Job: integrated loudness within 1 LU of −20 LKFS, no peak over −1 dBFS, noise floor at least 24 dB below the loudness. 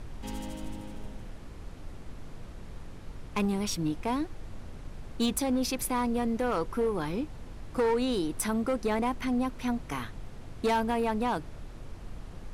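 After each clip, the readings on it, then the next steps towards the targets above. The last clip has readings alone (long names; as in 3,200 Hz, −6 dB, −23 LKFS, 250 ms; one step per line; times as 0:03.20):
share of clipped samples 1.5%; peaks flattened at −22.0 dBFS; background noise floor −45 dBFS; target noise floor −55 dBFS; integrated loudness −30.5 LKFS; sample peak −22.0 dBFS; target loudness −20.0 LKFS
→ clipped peaks rebuilt −22 dBFS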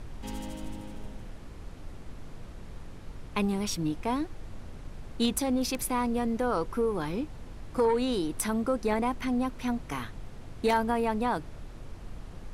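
share of clipped samples 0.0%; background noise floor −45 dBFS; target noise floor −54 dBFS
→ noise reduction from a noise print 9 dB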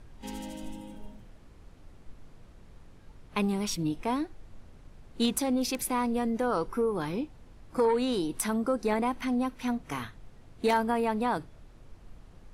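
background noise floor −53 dBFS; target noise floor −54 dBFS
→ noise reduction from a noise print 6 dB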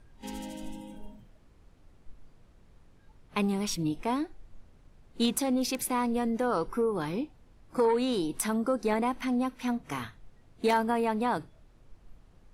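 background noise floor −59 dBFS; integrated loudness −30.0 LKFS; sample peak −13.0 dBFS; target loudness −20.0 LKFS
→ level +10 dB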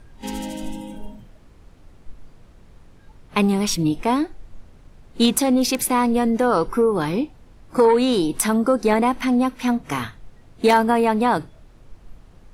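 integrated loudness −20.0 LKFS; sample peak −3.0 dBFS; background noise floor −49 dBFS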